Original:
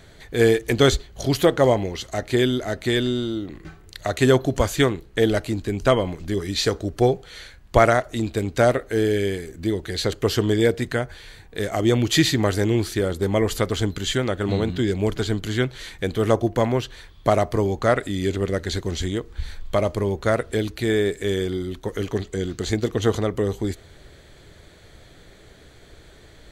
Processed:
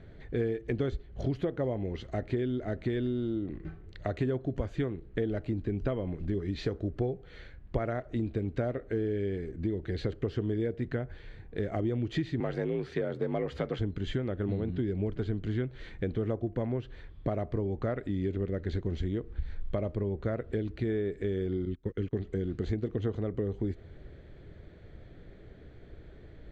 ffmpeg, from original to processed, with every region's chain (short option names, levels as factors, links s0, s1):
-filter_complex "[0:a]asettb=1/sr,asplit=3[s0][s1][s2];[s0]atrim=end=12.404[s3];[s1]atrim=start=12.4:end=13.79,asetpts=PTS-STARTPTS,afade=t=in:d=0.004:c=qsin,afade=t=out:st=1.386:d=0.004:c=qsin,asplit=2[s4][s5];[s5]highpass=f=720:p=1,volume=4.47,asoftclip=type=tanh:threshold=0.473[s6];[s4][s6]amix=inputs=2:normalize=0,lowpass=f=3600:p=1,volume=0.501,afreqshift=46[s7];[s2]atrim=start=13.786[s8];[s3][s7]acrossfade=d=0.004:c1=hsin:c2=qsin[s9];[s9][s8]acrossfade=d=0.004:c1=qsin:c2=hsin,asettb=1/sr,asplit=3[s10][s11][s12];[s10]atrim=end=21.654[s13];[s11]atrim=start=21.65:end=22.13,asetpts=PTS-STARTPTS,afade=t=in:d=0.004:c=qsin,afade=t=out:st=0.476:d=0.004:c=qsin,agate=range=0.0631:threshold=0.0251:ratio=16:release=100:detection=peak,equalizer=f=710:w=1.3:g=-10,acompressor=mode=upward:threshold=0.02:ratio=2.5:attack=3.2:release=140:knee=2.83:detection=peak[s14];[s12]atrim=start=22.126[s15];[s13][s14]acrossfade=d=0.004:c1=hsin:c2=qsin[s16];[s16][s15]acrossfade=d=0.004:c1=qsin:c2=hsin,lowpass=1500,equalizer=f=1000:w=0.89:g=-10.5,acompressor=threshold=0.0398:ratio=6"